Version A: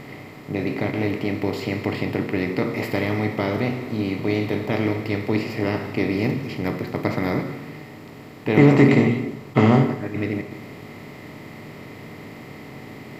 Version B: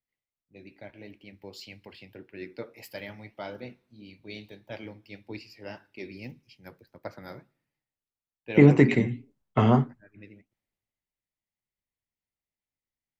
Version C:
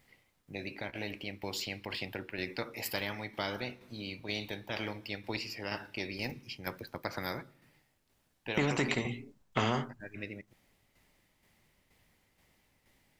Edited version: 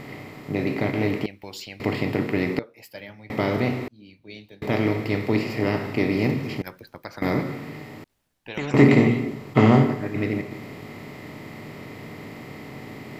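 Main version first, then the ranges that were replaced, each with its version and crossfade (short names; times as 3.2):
A
1.26–1.8 from C
2.59–3.3 from B
3.88–4.62 from B
6.62–7.22 from C
8.04–8.74 from C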